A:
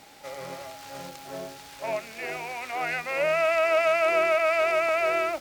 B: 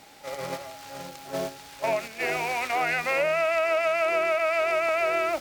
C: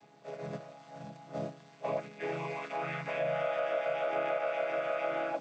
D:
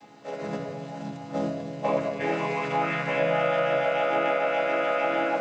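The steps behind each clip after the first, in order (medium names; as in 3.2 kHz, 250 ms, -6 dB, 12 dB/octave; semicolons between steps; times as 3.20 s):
gate -37 dBFS, range -7 dB; compression 6:1, threshold -29 dBFS, peak gain reduction 10 dB; trim +7 dB
vocoder on a held chord minor triad, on C#3; trim -7.5 dB
simulated room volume 3800 m³, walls mixed, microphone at 2.1 m; trim +8 dB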